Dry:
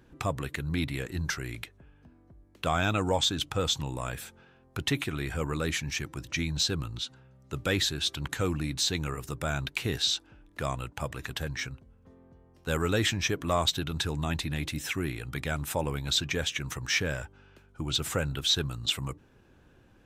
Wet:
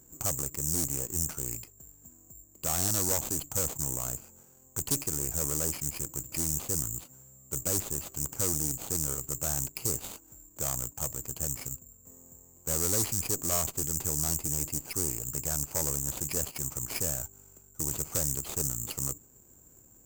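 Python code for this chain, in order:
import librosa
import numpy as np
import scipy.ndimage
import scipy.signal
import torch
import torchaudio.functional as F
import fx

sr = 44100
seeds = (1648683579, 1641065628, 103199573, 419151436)

p1 = scipy.ndimage.median_filter(x, 25, mode='constant')
p2 = (np.kron(scipy.signal.resample_poly(p1, 1, 6), np.eye(6)[0]) * 6)[:len(p1)]
p3 = 10.0 ** (-18.5 / 20.0) * np.tanh(p2 / 10.0 ** (-18.5 / 20.0))
p4 = p2 + (p3 * librosa.db_to_amplitude(-5.0))
p5 = fx.cheby_harmonics(p4, sr, harmonics=(4, 6), levels_db=(-6, -9), full_scale_db=0.0)
p6 = fx.doppler_dist(p5, sr, depth_ms=0.47)
y = p6 * librosa.db_to_amplitude(-7.0)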